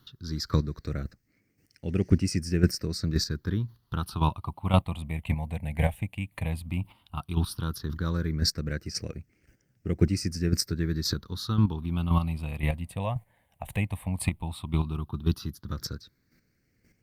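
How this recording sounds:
a quantiser's noise floor 12 bits, dither none
chopped level 1.9 Hz, depth 60%, duty 15%
phaser sweep stages 6, 0.13 Hz, lowest notch 360–1,000 Hz
Opus

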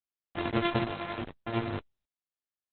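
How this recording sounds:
a buzz of ramps at a fixed pitch in blocks of 128 samples
tremolo triangle 11 Hz, depth 60%
a quantiser's noise floor 6 bits, dither none
Opus

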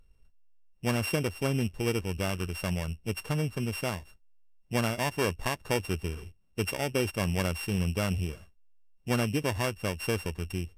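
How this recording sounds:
a buzz of ramps at a fixed pitch in blocks of 16 samples
Ogg Vorbis

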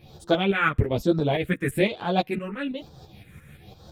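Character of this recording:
phaser sweep stages 4, 1.1 Hz, lowest notch 740–2,200 Hz
tremolo saw up 5.9 Hz, depth 60%
a shimmering, thickened sound

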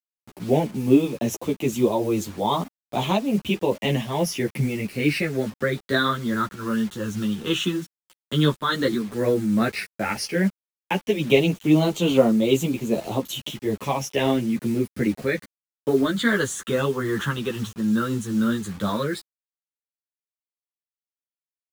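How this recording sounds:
phaser sweep stages 8, 0.1 Hz, lowest notch 660–1,600 Hz
a quantiser's noise floor 8 bits, dither none
tremolo triangle 2.4 Hz, depth 35%
a shimmering, thickened sound

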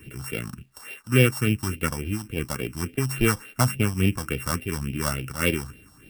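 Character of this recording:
a buzz of ramps at a fixed pitch in blocks of 16 samples
phaser sweep stages 4, 3.5 Hz, lowest notch 410–1,100 Hz
a quantiser's noise floor 12 bits, dither none
amplitude modulation by smooth noise

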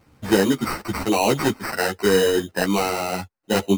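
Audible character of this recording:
aliases and images of a low sample rate 3,400 Hz, jitter 0%
a shimmering, thickened sound

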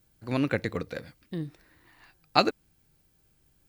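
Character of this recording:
background noise floor −68 dBFS
spectral slope −4.0 dB per octave

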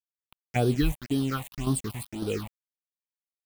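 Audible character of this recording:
chopped level 1.8 Hz, depth 65%, duty 65%
a quantiser's noise floor 6 bits, dither none
phaser sweep stages 6, 1.9 Hz, lowest notch 360–2,100 Hz

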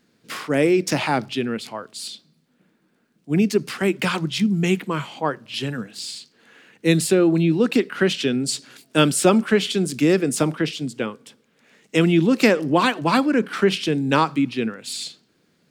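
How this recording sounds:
background noise floor −65 dBFS
spectral slope −5.0 dB per octave

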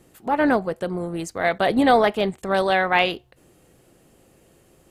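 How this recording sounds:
background noise floor −58 dBFS
spectral slope −3.0 dB per octave

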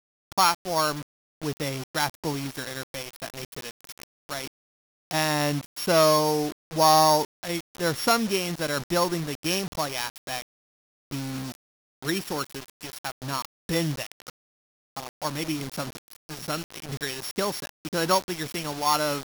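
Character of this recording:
a buzz of ramps at a fixed pitch in blocks of 8 samples
tremolo triangle 0.9 Hz, depth 35%
a quantiser's noise floor 6 bits, dither none

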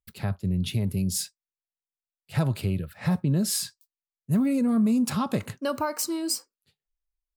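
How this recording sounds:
background noise floor −96 dBFS
spectral slope −5.5 dB per octave

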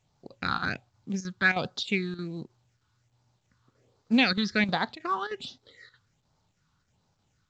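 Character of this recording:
phaser sweep stages 6, 1.3 Hz, lowest notch 600–2,500 Hz
chopped level 3.2 Hz, depth 65%, duty 85%
mu-law

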